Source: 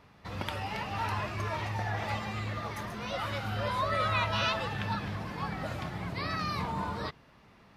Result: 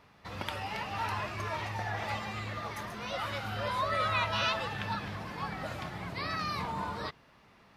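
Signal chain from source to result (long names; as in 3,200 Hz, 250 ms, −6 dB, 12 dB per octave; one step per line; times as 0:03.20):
low-shelf EQ 370 Hz −5 dB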